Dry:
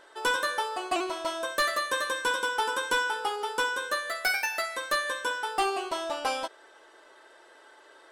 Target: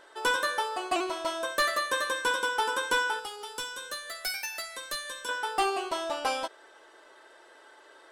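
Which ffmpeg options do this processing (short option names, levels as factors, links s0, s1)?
-filter_complex "[0:a]asettb=1/sr,asplit=3[s0][s1][s2];[s0]atrim=end=3.194[s3];[s1]atrim=start=3.19:end=5.29,asetpts=PTS-STARTPTS,afade=t=in:d=0.004:c=qsin,afade=t=out:st=2.096:d=0.004:c=qsin,acrossover=split=170|3000[s4][s5][s6];[s5]acompressor=threshold=0.00708:ratio=3[s7];[s4][s7][s6]amix=inputs=3:normalize=0[s8];[s2]atrim=start=5.286[s9];[s3][s8]acrossfade=d=0.004:c1=hsin:c2=qsin[s10];[s10][s9]acrossfade=d=0.004:c1=qsin:c2=hsin"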